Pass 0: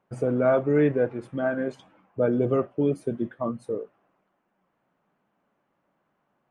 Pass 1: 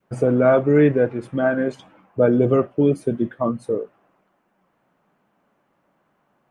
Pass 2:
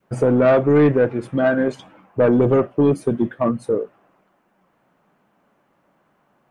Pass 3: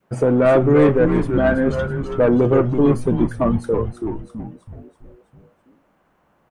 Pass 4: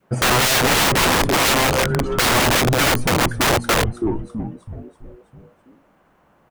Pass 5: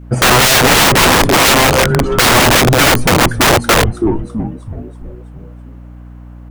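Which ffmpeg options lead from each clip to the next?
ffmpeg -i in.wav -af "adynamicequalizer=threshold=0.0141:dfrequency=800:dqfactor=0.85:tfrequency=800:tqfactor=0.85:attack=5:release=100:ratio=0.375:range=2:mode=cutabove:tftype=bell,volume=7dB" out.wav
ffmpeg -i in.wav -af "asoftclip=type=tanh:threshold=-11.5dB,volume=3.5dB" out.wav
ffmpeg -i in.wav -filter_complex "[0:a]asplit=7[link_01][link_02][link_03][link_04][link_05][link_06][link_07];[link_02]adelay=328,afreqshift=-120,volume=-6dB[link_08];[link_03]adelay=656,afreqshift=-240,volume=-11.8dB[link_09];[link_04]adelay=984,afreqshift=-360,volume=-17.7dB[link_10];[link_05]adelay=1312,afreqshift=-480,volume=-23.5dB[link_11];[link_06]adelay=1640,afreqshift=-600,volume=-29.4dB[link_12];[link_07]adelay=1968,afreqshift=-720,volume=-35.2dB[link_13];[link_01][link_08][link_09][link_10][link_11][link_12][link_13]amix=inputs=7:normalize=0" out.wav
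ffmpeg -i in.wav -af "aeval=exprs='(mod(5.96*val(0)+1,2)-1)/5.96':channel_layout=same,volume=4dB" out.wav
ffmpeg -i in.wav -af "aeval=exprs='val(0)+0.0112*(sin(2*PI*60*n/s)+sin(2*PI*2*60*n/s)/2+sin(2*PI*3*60*n/s)/3+sin(2*PI*4*60*n/s)/4+sin(2*PI*5*60*n/s)/5)':channel_layout=same,volume=7.5dB" out.wav

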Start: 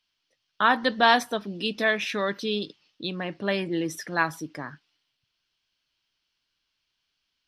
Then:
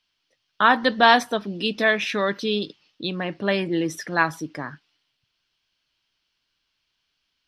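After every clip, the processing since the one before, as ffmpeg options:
ffmpeg -i in.wav -af "highshelf=frequency=8800:gain=-7,volume=4dB" out.wav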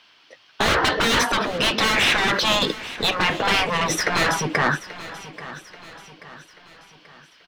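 ffmpeg -i in.wav -filter_complex "[0:a]asplit=2[link_01][link_02];[link_02]highpass=frequency=720:poles=1,volume=34dB,asoftclip=type=tanh:threshold=-1dB[link_03];[link_01][link_03]amix=inputs=2:normalize=0,lowpass=frequency=1200:poles=1,volume=-6dB,afftfilt=real='re*lt(hypot(re,im),0.631)':imag='im*lt(hypot(re,im),0.631)':win_size=1024:overlap=0.75,aecho=1:1:834|1668|2502|3336:0.158|0.0745|0.035|0.0165,volume=1dB" out.wav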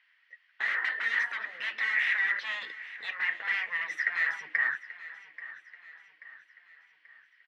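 ffmpeg -i in.wav -af "bandpass=frequency=1900:width_type=q:width=11:csg=0,volume=1.5dB" out.wav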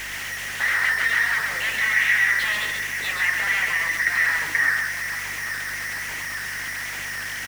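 ffmpeg -i in.wav -filter_complex "[0:a]aeval=exprs='val(0)+0.5*0.0266*sgn(val(0))':channel_layout=same,aeval=exprs='val(0)+0.00282*(sin(2*PI*50*n/s)+sin(2*PI*2*50*n/s)/2+sin(2*PI*3*50*n/s)/3+sin(2*PI*4*50*n/s)/4+sin(2*PI*5*50*n/s)/5)':channel_layout=same,asplit=2[link_01][link_02];[link_02]aecho=0:1:132:0.596[link_03];[link_01][link_03]amix=inputs=2:normalize=0,volume=5dB" out.wav

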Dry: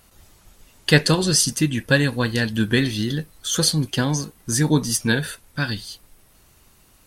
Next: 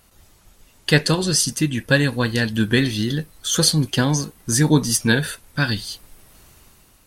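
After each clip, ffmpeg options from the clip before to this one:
ffmpeg -i in.wav -af "dynaudnorm=framelen=190:gausssize=7:maxgain=7dB,volume=-1dB" out.wav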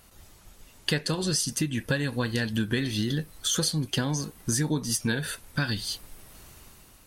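ffmpeg -i in.wav -af "acompressor=threshold=-24dB:ratio=6" out.wav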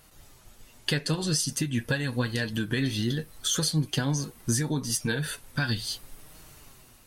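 ffmpeg -i in.wav -af "flanger=delay=6.4:depth=2.1:regen=48:speed=0.78:shape=sinusoidal,volume=3.5dB" out.wav

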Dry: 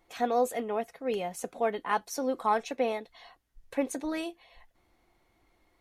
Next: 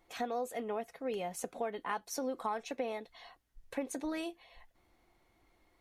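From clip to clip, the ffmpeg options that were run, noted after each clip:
ffmpeg -i in.wav -af "acompressor=threshold=-32dB:ratio=4,volume=-1.5dB" out.wav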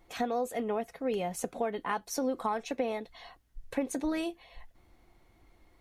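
ffmpeg -i in.wav -af "lowshelf=frequency=220:gain=8,volume=3.5dB" out.wav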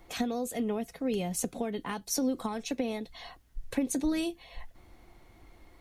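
ffmpeg -i in.wav -filter_complex "[0:a]acrossover=split=320|3000[link_01][link_02][link_03];[link_02]acompressor=threshold=-54dB:ratio=2[link_04];[link_01][link_04][link_03]amix=inputs=3:normalize=0,volume=6.5dB" out.wav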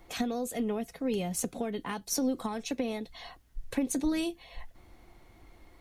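ffmpeg -i in.wav -af "aeval=exprs='0.15*(cos(1*acos(clip(val(0)/0.15,-1,1)))-cos(1*PI/2))+0.015*(cos(2*acos(clip(val(0)/0.15,-1,1)))-cos(2*PI/2))':channel_layout=same" out.wav

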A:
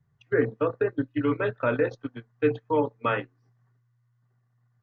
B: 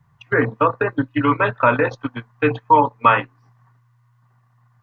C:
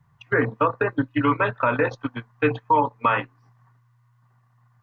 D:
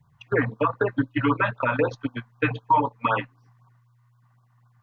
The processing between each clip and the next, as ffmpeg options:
ffmpeg -i in.wav -filter_complex "[0:a]equalizer=frequency=400:width_type=o:width=0.67:gain=-7,equalizer=frequency=1000:width_type=o:width=0.67:gain=12,equalizer=frequency=2500:width_type=o:width=0.67:gain=4,asplit=2[link_01][link_02];[link_02]acompressor=threshold=-28dB:ratio=6,volume=-3dB[link_03];[link_01][link_03]amix=inputs=2:normalize=0,volume=5.5dB" out.wav
ffmpeg -i in.wav -af "alimiter=limit=-7dB:level=0:latency=1:release=133,volume=-2.5dB" out.wav
ffmpeg -i in.wav -af "afftfilt=real='re*(1-between(b*sr/1024,330*pow(2400/330,0.5+0.5*sin(2*PI*3.9*pts/sr))/1.41,330*pow(2400/330,0.5+0.5*sin(2*PI*3.9*pts/sr))*1.41))':imag='im*(1-between(b*sr/1024,330*pow(2400/330,0.5+0.5*sin(2*PI*3.9*pts/sr))/1.41,330*pow(2400/330,0.5+0.5*sin(2*PI*3.9*pts/sr))*1.41))':win_size=1024:overlap=0.75" out.wav

